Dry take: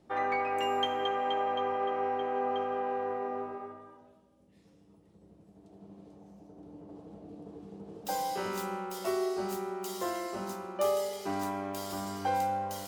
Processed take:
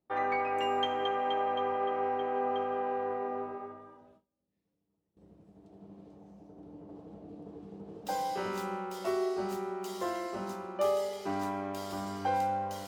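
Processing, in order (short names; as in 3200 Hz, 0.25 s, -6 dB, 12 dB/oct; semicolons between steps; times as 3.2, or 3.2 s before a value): gate with hold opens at -50 dBFS; high shelf 6800 Hz -10 dB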